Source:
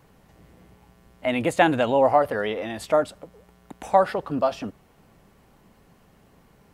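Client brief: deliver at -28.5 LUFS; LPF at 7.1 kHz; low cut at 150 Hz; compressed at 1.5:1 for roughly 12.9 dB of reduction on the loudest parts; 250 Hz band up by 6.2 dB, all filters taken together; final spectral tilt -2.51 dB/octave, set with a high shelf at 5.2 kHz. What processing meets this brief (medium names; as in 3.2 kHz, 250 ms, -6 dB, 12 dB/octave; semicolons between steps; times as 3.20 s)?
high-pass 150 Hz; low-pass 7.1 kHz; peaking EQ 250 Hz +8 dB; treble shelf 5.2 kHz -8.5 dB; compression 1.5:1, threshold -49 dBFS; trim +4.5 dB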